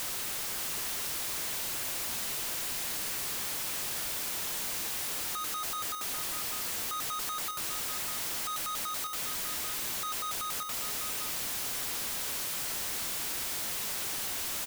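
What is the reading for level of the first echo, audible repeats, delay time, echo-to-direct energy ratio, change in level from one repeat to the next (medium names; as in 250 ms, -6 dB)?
-8.5 dB, 2, 598 ms, -8.5 dB, -14.0 dB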